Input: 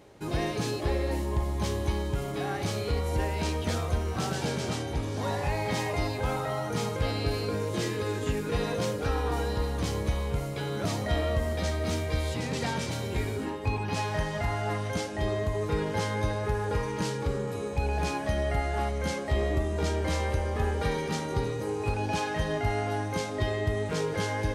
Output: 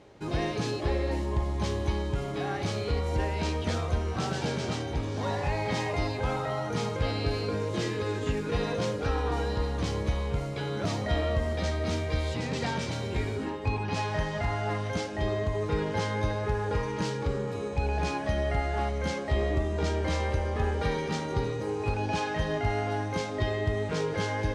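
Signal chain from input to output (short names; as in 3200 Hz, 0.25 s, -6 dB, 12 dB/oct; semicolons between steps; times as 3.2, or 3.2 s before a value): LPF 6400 Hz 12 dB/oct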